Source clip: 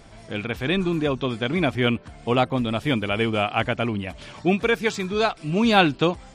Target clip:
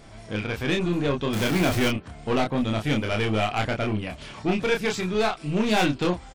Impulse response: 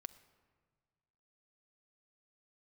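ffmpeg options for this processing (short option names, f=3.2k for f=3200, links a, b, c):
-filter_complex "[0:a]asettb=1/sr,asplit=3[a][b][c];[a]atrim=end=1.334[d];[b]atrim=start=1.33:end=1.88,asetpts=PTS-STARTPTS,afade=t=in:d=0.004:c=qsin,afade=t=out:st=0.546:d=0.004:c=qsin,aeval=exprs='val(0)+0.5*0.0668*sgn(val(0))':c=same[e];[c]atrim=start=1.876[f];[d][e]acrossfade=d=0.004:c1=hsin:c2=qsin[g];[g][f]acrossfade=d=0.004:c1=qsin:c2=hsin,aeval=exprs='(tanh(8.91*val(0)+0.35)-tanh(0.35))/8.91':c=same,asplit=2[h][i];[i]adelay=28,volume=-3.5dB[j];[h][j]amix=inputs=2:normalize=0"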